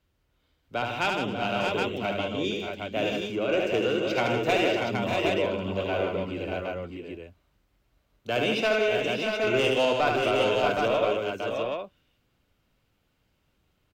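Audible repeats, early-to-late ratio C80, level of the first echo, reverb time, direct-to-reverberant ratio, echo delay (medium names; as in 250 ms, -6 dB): 6, no reverb, -4.0 dB, no reverb, no reverb, 74 ms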